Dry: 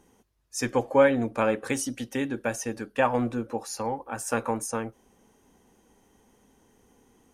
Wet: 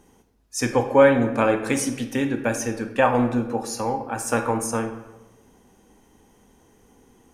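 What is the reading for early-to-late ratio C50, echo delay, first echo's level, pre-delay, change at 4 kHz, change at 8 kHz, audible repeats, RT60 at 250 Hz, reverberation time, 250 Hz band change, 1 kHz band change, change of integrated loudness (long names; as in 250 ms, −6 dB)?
9.0 dB, no echo audible, no echo audible, 17 ms, +4.5 dB, +4.5 dB, no echo audible, 1.1 s, 1.1 s, +6.0 dB, +5.0 dB, +5.0 dB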